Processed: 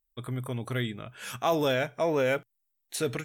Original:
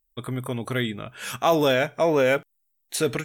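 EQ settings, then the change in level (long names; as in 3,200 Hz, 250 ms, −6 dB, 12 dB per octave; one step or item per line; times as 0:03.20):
dynamic equaliser 120 Hz, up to +5 dB, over −46 dBFS, Q 4.9
−6.0 dB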